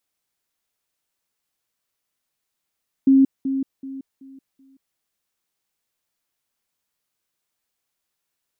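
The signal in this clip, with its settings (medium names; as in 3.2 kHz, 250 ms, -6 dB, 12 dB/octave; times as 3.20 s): level ladder 269 Hz -10 dBFS, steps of -10 dB, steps 5, 0.18 s 0.20 s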